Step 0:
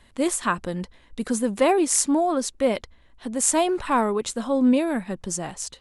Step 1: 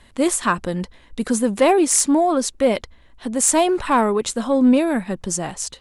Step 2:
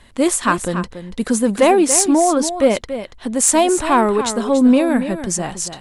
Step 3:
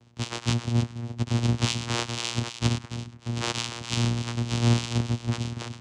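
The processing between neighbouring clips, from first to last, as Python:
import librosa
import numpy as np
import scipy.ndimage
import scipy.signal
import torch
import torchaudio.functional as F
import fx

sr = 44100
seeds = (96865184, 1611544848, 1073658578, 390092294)

y1 = fx.fold_sine(x, sr, drive_db=5, ceiling_db=-2.5)
y1 = y1 * 10.0 ** (-4.0 / 20.0)
y2 = y1 + 10.0 ** (-10.5 / 20.0) * np.pad(y1, (int(284 * sr / 1000.0), 0))[:len(y1)]
y2 = y2 * 10.0 ** (2.5 / 20.0)
y3 = fx.bit_reversed(y2, sr, seeds[0], block=128)
y3 = fx.echo_stepped(y3, sr, ms=103, hz=3200.0, octaves=-1.4, feedback_pct=70, wet_db=-10.0)
y3 = fx.vocoder(y3, sr, bands=4, carrier='saw', carrier_hz=118.0)
y3 = y3 * 10.0 ** (-3.5 / 20.0)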